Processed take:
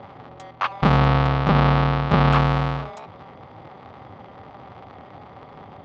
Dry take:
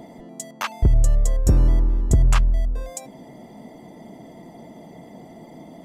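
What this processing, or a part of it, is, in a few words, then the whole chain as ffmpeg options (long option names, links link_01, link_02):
ring modulator pedal into a guitar cabinet: -filter_complex "[0:a]aeval=exprs='val(0)*sgn(sin(2*PI*100*n/s))':channel_layout=same,highpass=87,equalizer=frequency=98:width_type=q:width=4:gain=5,equalizer=frequency=330:width_type=q:width=4:gain=-8,equalizer=frequency=810:width_type=q:width=4:gain=6,equalizer=frequency=1200:width_type=q:width=4:gain=9,lowpass=frequency=3900:width=0.5412,lowpass=frequency=3900:width=1.3066,asettb=1/sr,asplit=3[link_01][link_02][link_03];[link_01]atrim=end=0.984[link_04];[link_02]atrim=start=0.98:end=2.32,asetpts=PTS-STARTPTS,afade=type=in:duration=0.004:curve=qsin,afade=type=out:start_time=1.336:duration=0.004:curve=qsin,lowpass=frequency=5700:width=0.5412,lowpass=frequency=5700:width=1.3066[link_05];[link_03]atrim=start=2.316[link_06];[link_04][link_05]acrossfade=duration=0.004:curve1=hsin:curve2=qsin[link_07];[link_07][link_06]acrossfade=duration=0.004:curve1=qsin:curve2=hsin,volume=-1dB"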